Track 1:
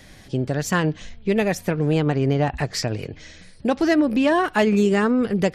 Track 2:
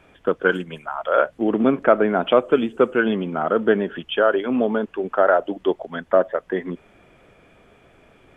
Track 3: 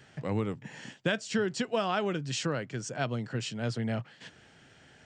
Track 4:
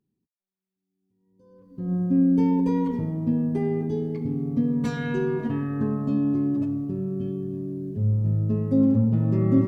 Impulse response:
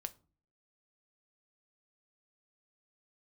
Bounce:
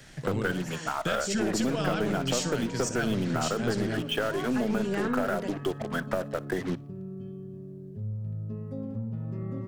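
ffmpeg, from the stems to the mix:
-filter_complex "[0:a]alimiter=limit=0.266:level=0:latency=1,tremolo=f=0.6:d=0.79,volume=0.501,asplit=2[s0][s1];[s1]volume=0.251[s2];[1:a]equalizer=f=89:t=o:w=1.9:g=6.5,acrossover=split=180|3000[s3][s4][s5];[s4]acompressor=threshold=0.0794:ratio=6[s6];[s3][s6][s5]amix=inputs=3:normalize=0,acrusher=bits=5:mix=0:aa=0.5,volume=0.668,asplit=3[s7][s8][s9];[s8]volume=0.596[s10];[s9]volume=0.0794[s11];[2:a]bass=f=250:g=3,treble=f=4000:g=13,volume=1,asplit=2[s12][s13];[s13]volume=0.251[s14];[3:a]equalizer=f=290:t=o:w=0.3:g=-14.5,acompressor=threshold=0.0282:ratio=1.5,volume=0.501[s15];[4:a]atrim=start_sample=2205[s16];[s10][s16]afir=irnorm=-1:irlink=0[s17];[s2][s11][s14]amix=inputs=3:normalize=0,aecho=0:1:60|120|180|240|300:1|0.36|0.13|0.0467|0.0168[s18];[s0][s7][s12][s15][s17][s18]amix=inputs=6:normalize=0,equalizer=f=1500:t=o:w=0.43:g=3,aeval=exprs='(tanh(5.01*val(0)+0.4)-tanh(0.4))/5.01':c=same,acompressor=threshold=0.0501:ratio=2"

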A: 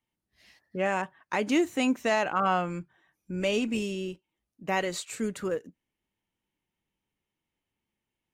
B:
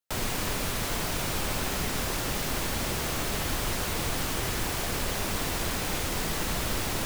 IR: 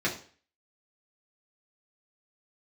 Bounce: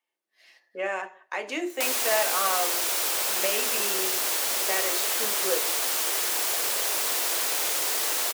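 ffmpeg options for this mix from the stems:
-filter_complex "[0:a]alimiter=limit=0.1:level=0:latency=1:release=323,volume=0.944,asplit=2[s0][s1];[s1]volume=0.282[s2];[1:a]acompressor=mode=upward:threshold=0.0141:ratio=2.5,highshelf=f=4100:g=10,adelay=1700,volume=1[s3];[2:a]atrim=start_sample=2205[s4];[s2][s4]afir=irnorm=-1:irlink=0[s5];[s0][s3][s5]amix=inputs=3:normalize=0,highpass=f=400:w=0.5412,highpass=f=400:w=1.3066"

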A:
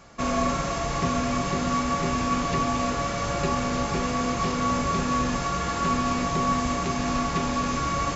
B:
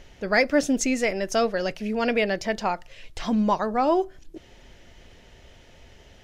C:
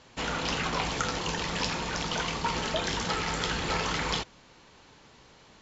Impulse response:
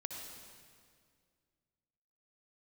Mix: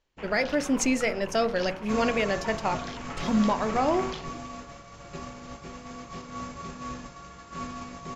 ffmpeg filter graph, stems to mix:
-filter_complex "[0:a]adelay=1700,volume=0.562[s0];[1:a]volume=1.26[s1];[2:a]afwtdn=0.02,volume=0.376[s2];[s0][s1]amix=inputs=2:normalize=0,agate=range=0.0224:threshold=0.0794:ratio=3:detection=peak,alimiter=limit=0.178:level=0:latency=1:release=345,volume=1[s3];[s2][s3]amix=inputs=2:normalize=0,bandreject=f=47.22:t=h:w=4,bandreject=f=94.44:t=h:w=4,bandreject=f=141.66:t=h:w=4,bandreject=f=188.88:t=h:w=4,bandreject=f=236.1:t=h:w=4,bandreject=f=283.32:t=h:w=4,bandreject=f=330.54:t=h:w=4,bandreject=f=377.76:t=h:w=4,bandreject=f=424.98:t=h:w=4,bandreject=f=472.2:t=h:w=4,bandreject=f=519.42:t=h:w=4,bandreject=f=566.64:t=h:w=4,bandreject=f=613.86:t=h:w=4,bandreject=f=661.08:t=h:w=4,bandreject=f=708.3:t=h:w=4,bandreject=f=755.52:t=h:w=4,bandreject=f=802.74:t=h:w=4,bandreject=f=849.96:t=h:w=4,bandreject=f=897.18:t=h:w=4,bandreject=f=944.4:t=h:w=4,bandreject=f=991.62:t=h:w=4,bandreject=f=1038.84:t=h:w=4,bandreject=f=1086.06:t=h:w=4,bandreject=f=1133.28:t=h:w=4,bandreject=f=1180.5:t=h:w=4,bandreject=f=1227.72:t=h:w=4,bandreject=f=1274.94:t=h:w=4,bandreject=f=1322.16:t=h:w=4,bandreject=f=1369.38:t=h:w=4,bandreject=f=1416.6:t=h:w=4,bandreject=f=1463.82:t=h:w=4,bandreject=f=1511.04:t=h:w=4,bandreject=f=1558.26:t=h:w=4,bandreject=f=1605.48:t=h:w=4,bandreject=f=1652.7:t=h:w=4,bandreject=f=1699.92:t=h:w=4,bandreject=f=1747.14:t=h:w=4"

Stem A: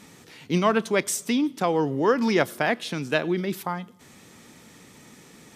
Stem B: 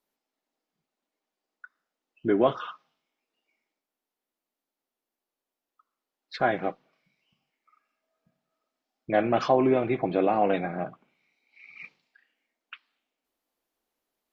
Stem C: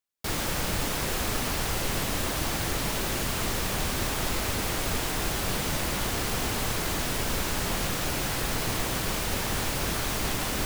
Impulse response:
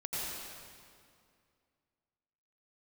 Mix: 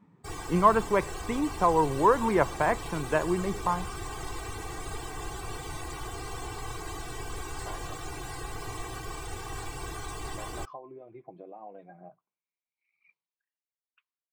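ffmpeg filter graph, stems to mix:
-filter_complex "[0:a]lowpass=1600,volume=0.794[s0];[1:a]acompressor=threshold=0.0447:ratio=6,adelay=1250,volume=0.188[s1];[2:a]equalizer=f=170:t=o:w=1.3:g=5.5,aecho=1:1:2.6:0.86,volume=0.266[s2];[s0][s1][s2]amix=inputs=3:normalize=0,afftdn=nr=15:nf=-43,equalizer=f=250:t=o:w=0.33:g=-9,equalizer=f=1000:t=o:w=0.33:g=11,equalizer=f=8000:t=o:w=0.33:g=11"

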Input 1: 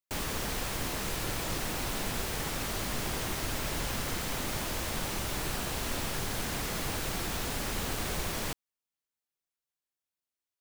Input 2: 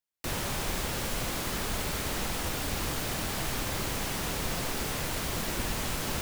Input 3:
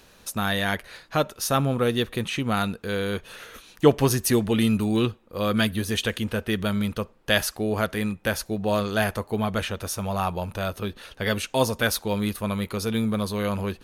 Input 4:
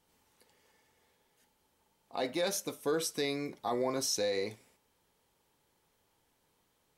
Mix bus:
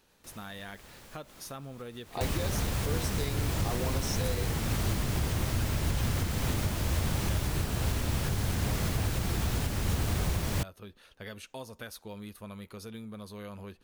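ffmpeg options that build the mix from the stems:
-filter_complex "[0:a]equalizer=f=86:w=0.58:g=15,adelay=2100,volume=1.26[s0];[1:a]volume=0.106[s1];[2:a]volume=0.188,asplit=2[s2][s3];[3:a]volume=1[s4];[s3]apad=whole_len=273938[s5];[s1][s5]sidechaincompress=threshold=0.0126:ratio=8:attack=47:release=155[s6];[s6][s2]amix=inputs=2:normalize=0,acompressor=threshold=0.0112:ratio=5,volume=1[s7];[s0][s4][s7]amix=inputs=3:normalize=0,alimiter=limit=0.106:level=0:latency=1:release=476"

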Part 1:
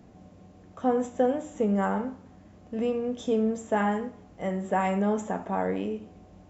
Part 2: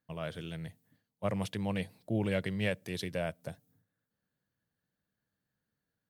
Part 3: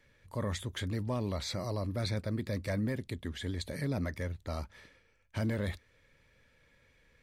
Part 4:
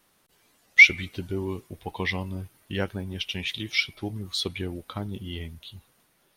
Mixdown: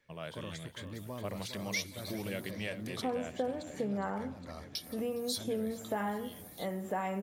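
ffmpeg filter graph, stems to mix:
-filter_complex "[0:a]adelay=2200,volume=0.841[s0];[1:a]adynamicequalizer=threshold=0.00316:dfrequency=2000:dqfactor=0.7:tfrequency=2000:tqfactor=0.7:attack=5:release=100:ratio=0.375:range=2:mode=boostabove:tftype=highshelf,volume=0.708,asplit=2[s1][s2];[s2]volume=0.168[s3];[2:a]volume=0.473,asplit=2[s4][s5];[s5]volume=0.355[s6];[3:a]highshelf=f=11000:g=10,aexciter=amount=9.4:drive=4.8:freq=3800,adelay=950,volume=0.133,asplit=3[s7][s8][s9];[s7]atrim=end=2.51,asetpts=PTS-STARTPTS,afade=t=out:st=2.506:d=0.004:c=hsin[s10];[s8]atrim=start=2.51:end=4.75,asetpts=PTS-STARTPTS,volume=0[s11];[s9]atrim=start=4.75,asetpts=PTS-STARTPTS,afade=t=in:d=0.004:c=hsin[s12];[s10][s11][s12]concat=n=3:v=0:a=1,asplit=2[s13][s14];[s14]volume=0.0708[s15];[s3][s6][s15]amix=inputs=3:normalize=0,aecho=0:1:410|820|1230|1640|2050|2460|2870:1|0.47|0.221|0.104|0.0488|0.0229|0.0108[s16];[s0][s1][s4][s13][s16]amix=inputs=5:normalize=0,lowshelf=f=83:g=-11.5,acompressor=threshold=0.0141:ratio=2"

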